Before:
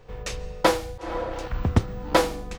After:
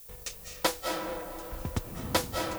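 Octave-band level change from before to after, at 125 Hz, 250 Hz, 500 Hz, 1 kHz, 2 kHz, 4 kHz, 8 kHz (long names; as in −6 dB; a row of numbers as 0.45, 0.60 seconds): −11.0, −8.5, −9.0, −7.5, −6.0, −2.5, +0.5 decibels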